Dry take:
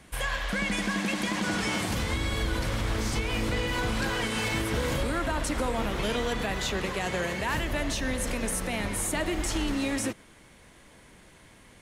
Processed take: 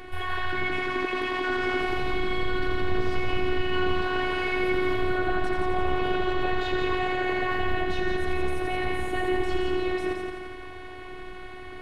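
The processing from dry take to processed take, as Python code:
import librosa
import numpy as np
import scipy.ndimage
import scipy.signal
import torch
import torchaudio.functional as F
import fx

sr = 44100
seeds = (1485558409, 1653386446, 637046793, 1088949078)

p1 = fx.high_shelf(x, sr, hz=7500.0, db=9.5)
p2 = fx.over_compress(p1, sr, threshold_db=-36.0, ratio=-0.5)
p3 = p1 + F.gain(torch.from_numpy(p2), 0.5).numpy()
p4 = fx.air_absorb(p3, sr, metres=410.0)
p5 = fx.echo_heads(p4, sr, ms=85, heads='first and second', feedback_pct=57, wet_db=-7.0)
p6 = fx.robotise(p5, sr, hz=368.0)
y = F.gain(torch.from_numpy(p6), 3.0).numpy()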